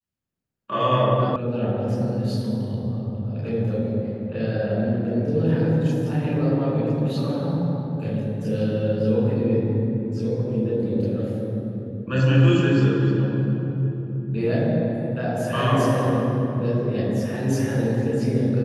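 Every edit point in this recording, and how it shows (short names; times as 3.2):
1.36 sound cut off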